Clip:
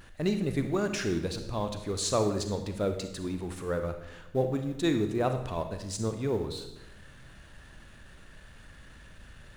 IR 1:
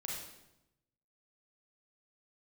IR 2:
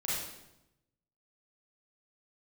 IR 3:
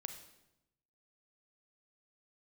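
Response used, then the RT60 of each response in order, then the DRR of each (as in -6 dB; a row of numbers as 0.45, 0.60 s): 3; 0.90, 0.90, 0.90 s; -3.5, -8.0, 6.5 dB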